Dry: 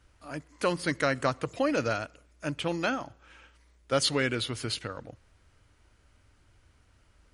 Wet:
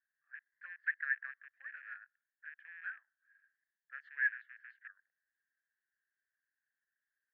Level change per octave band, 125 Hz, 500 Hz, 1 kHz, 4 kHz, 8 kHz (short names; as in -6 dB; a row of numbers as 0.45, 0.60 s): under -40 dB, under -40 dB, -24.5 dB, under -40 dB, under -40 dB